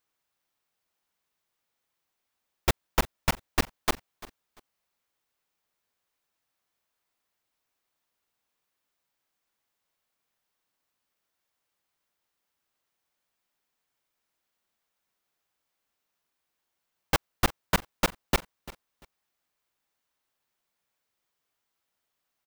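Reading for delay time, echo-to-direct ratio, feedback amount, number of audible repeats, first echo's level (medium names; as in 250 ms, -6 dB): 344 ms, -19.0 dB, 23%, 2, -19.0 dB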